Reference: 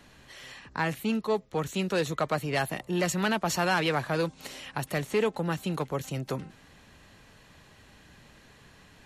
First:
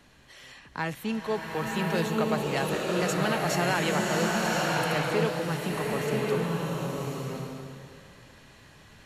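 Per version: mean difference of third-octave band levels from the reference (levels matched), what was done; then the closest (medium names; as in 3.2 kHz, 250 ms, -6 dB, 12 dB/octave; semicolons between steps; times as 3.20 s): 8.0 dB: swelling reverb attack 1090 ms, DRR -3 dB; trim -2.5 dB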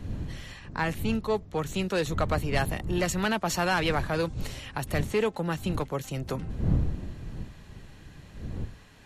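3.5 dB: wind noise 120 Hz -34 dBFS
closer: second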